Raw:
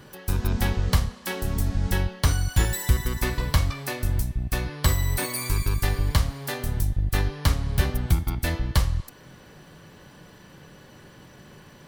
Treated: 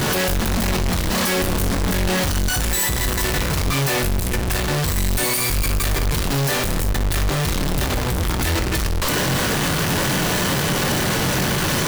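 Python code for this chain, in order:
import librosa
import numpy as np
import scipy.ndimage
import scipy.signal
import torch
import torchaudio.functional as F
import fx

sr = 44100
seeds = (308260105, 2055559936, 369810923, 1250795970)

y = np.sign(x) * np.sqrt(np.mean(np.square(x)))
y = fx.room_early_taps(y, sr, ms=(22, 60), db=(-9.5, -12.0))
y = y * 10.0 ** (4.0 / 20.0)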